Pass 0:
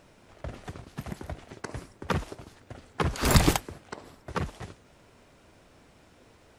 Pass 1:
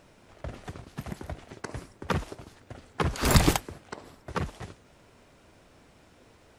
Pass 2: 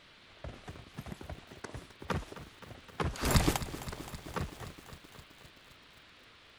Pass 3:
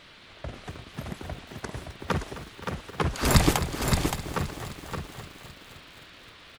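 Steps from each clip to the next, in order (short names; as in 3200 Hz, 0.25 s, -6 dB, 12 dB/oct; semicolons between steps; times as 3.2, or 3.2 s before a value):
nothing audible
band noise 990–4100 Hz -53 dBFS; lo-fi delay 0.261 s, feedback 80%, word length 7-bit, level -14 dB; gain -6.5 dB
echo 0.571 s -5.5 dB; gain +7 dB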